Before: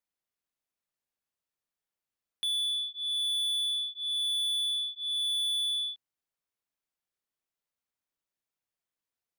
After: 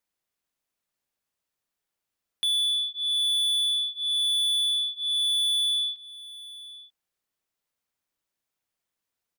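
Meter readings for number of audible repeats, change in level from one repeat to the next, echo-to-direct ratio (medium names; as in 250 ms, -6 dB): 1, no regular repeats, -18.0 dB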